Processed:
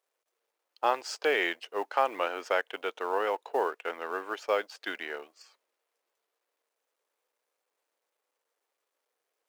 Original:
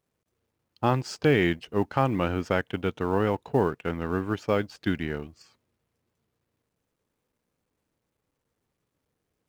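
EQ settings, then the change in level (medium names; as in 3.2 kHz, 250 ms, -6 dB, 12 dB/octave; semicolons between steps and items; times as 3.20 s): high-pass 480 Hz 24 dB/octave; 0.0 dB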